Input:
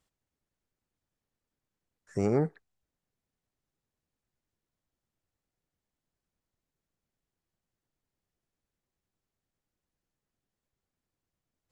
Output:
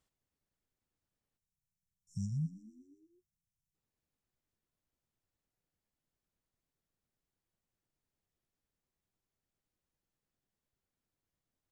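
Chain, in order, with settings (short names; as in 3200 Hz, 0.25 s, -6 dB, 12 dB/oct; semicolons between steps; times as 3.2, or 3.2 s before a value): spectral delete 1.38–3.75, 200–5200 Hz; frequency-shifting echo 0.122 s, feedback 64%, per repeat +33 Hz, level -17.5 dB; gain -3.5 dB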